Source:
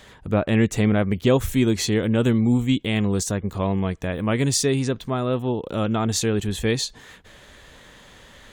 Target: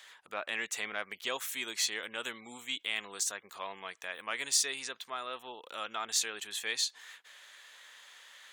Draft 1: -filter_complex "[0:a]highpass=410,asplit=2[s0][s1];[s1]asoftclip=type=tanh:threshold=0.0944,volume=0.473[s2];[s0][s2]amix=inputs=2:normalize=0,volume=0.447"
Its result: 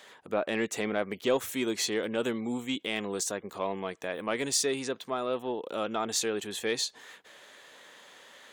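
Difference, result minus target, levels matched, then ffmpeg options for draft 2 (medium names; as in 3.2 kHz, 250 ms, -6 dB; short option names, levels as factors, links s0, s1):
500 Hz band +11.0 dB
-filter_complex "[0:a]highpass=1300,asplit=2[s0][s1];[s1]asoftclip=type=tanh:threshold=0.0944,volume=0.473[s2];[s0][s2]amix=inputs=2:normalize=0,volume=0.447"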